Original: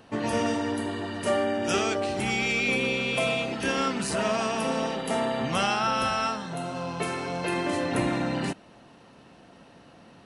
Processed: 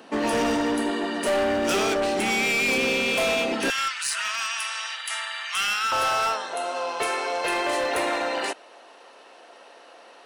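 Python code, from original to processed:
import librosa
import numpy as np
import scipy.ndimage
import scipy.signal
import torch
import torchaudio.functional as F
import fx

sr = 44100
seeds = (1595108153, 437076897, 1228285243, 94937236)

y = fx.highpass(x, sr, hz=fx.steps((0.0, 220.0), (3.7, 1400.0), (5.92, 430.0)), slope=24)
y = np.clip(10.0 ** (26.5 / 20.0) * y, -1.0, 1.0) / 10.0 ** (26.5 / 20.0)
y = y * librosa.db_to_amplitude(6.5)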